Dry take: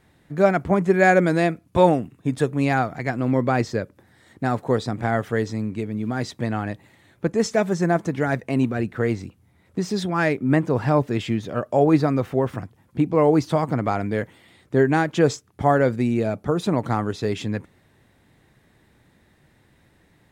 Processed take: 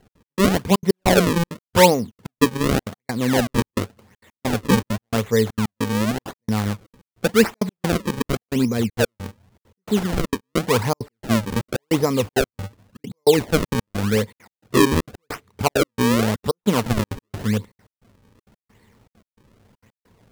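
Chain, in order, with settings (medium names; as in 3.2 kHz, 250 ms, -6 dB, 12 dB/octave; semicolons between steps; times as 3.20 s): rippled EQ curve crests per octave 0.9, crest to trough 10 dB; trance gate "x.x..xxxx" 199 bpm -60 dB; decimation with a swept rate 36×, swing 160% 0.89 Hz; trim +1.5 dB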